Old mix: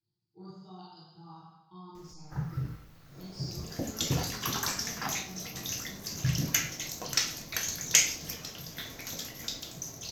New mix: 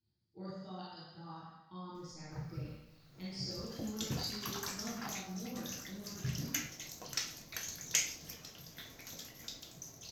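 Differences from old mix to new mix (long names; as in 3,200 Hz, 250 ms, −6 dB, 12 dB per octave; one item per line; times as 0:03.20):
speech: remove phaser with its sweep stopped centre 370 Hz, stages 8
background −9.5 dB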